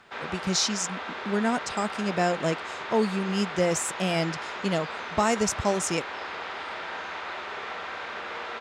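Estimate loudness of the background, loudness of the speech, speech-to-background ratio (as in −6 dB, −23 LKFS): −35.0 LKFS, −27.5 LKFS, 7.5 dB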